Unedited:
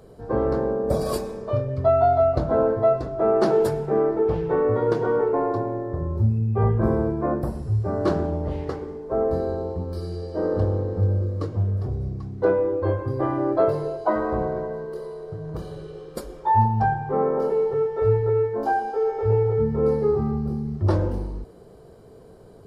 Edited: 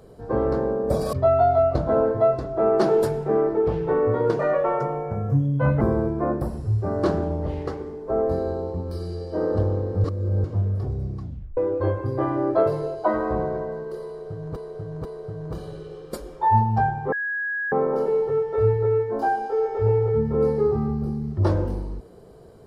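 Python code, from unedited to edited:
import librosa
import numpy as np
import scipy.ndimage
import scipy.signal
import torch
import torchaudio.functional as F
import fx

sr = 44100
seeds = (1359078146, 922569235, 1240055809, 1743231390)

y = fx.edit(x, sr, fx.cut(start_s=1.13, length_s=0.62),
    fx.speed_span(start_s=5.01, length_s=1.82, speed=1.28),
    fx.reverse_span(start_s=11.06, length_s=0.4),
    fx.tape_stop(start_s=12.24, length_s=0.35),
    fx.repeat(start_s=15.09, length_s=0.49, count=3),
    fx.insert_tone(at_s=17.16, length_s=0.6, hz=1660.0, db=-24.0), tone=tone)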